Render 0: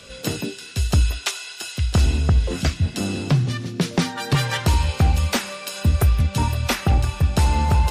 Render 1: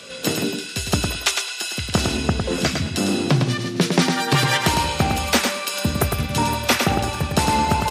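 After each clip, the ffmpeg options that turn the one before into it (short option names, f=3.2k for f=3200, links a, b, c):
-filter_complex "[0:a]highpass=180,asplit=2[a][b];[b]aecho=0:1:106|212|318:0.562|0.101|0.0182[c];[a][c]amix=inputs=2:normalize=0,volume=4.5dB"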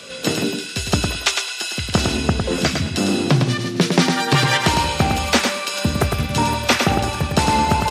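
-filter_complex "[0:a]acrossover=split=8500[a][b];[b]acompressor=threshold=-40dB:ratio=4:attack=1:release=60[c];[a][c]amix=inputs=2:normalize=0,volume=2dB"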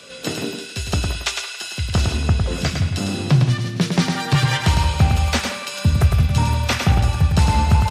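-filter_complex "[0:a]flanger=delay=6.9:depth=4.4:regen=-79:speed=0.35:shape=sinusoidal,asubboost=boost=8:cutoff=110,asplit=2[a][b];[b]adelay=170,highpass=300,lowpass=3.4k,asoftclip=type=hard:threshold=-13dB,volume=-11dB[c];[a][c]amix=inputs=2:normalize=0"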